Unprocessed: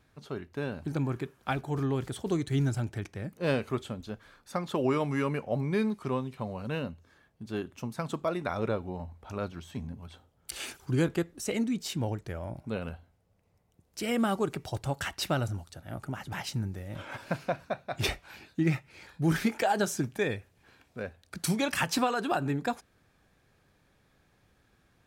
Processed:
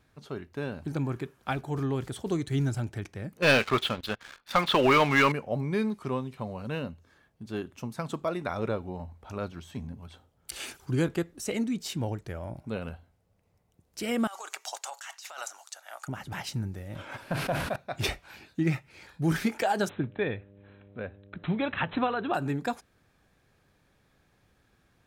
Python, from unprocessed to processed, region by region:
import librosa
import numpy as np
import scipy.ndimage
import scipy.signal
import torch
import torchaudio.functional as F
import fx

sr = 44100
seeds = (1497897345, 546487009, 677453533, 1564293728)

y = fx.chain(x, sr, fx.lowpass(hz=3900.0, slope=24),
    fx.tilt_shelf(db=-9.0, hz=850.0),
    fx.leveller(passes=3), at=(3.42, 5.32))
y = fx.chain(y, sr, fx.highpass(hz=760.0, slope=24),
    fx.peak_eq(hz=6700.0, db=11.0, octaves=0.49),
    fx.over_compress(threshold_db=-40.0, ratio=-1.0), at=(14.27, 16.08))
y = fx.chain(y, sr, fx.delta_mod(bps=64000, step_db=-43.5),
    fx.peak_eq(hz=6900.0, db=-10.5, octaves=1.1),
    fx.sustainer(db_per_s=49.0), at=(17.2, 17.76))
y = fx.median_filter(y, sr, points=9, at=(19.88, 22.33), fade=0.02)
y = fx.dmg_buzz(y, sr, base_hz=100.0, harmonics=6, level_db=-54.0, tilt_db=-4, odd_only=False, at=(19.88, 22.33), fade=0.02)
y = fx.brickwall_lowpass(y, sr, high_hz=4100.0, at=(19.88, 22.33), fade=0.02)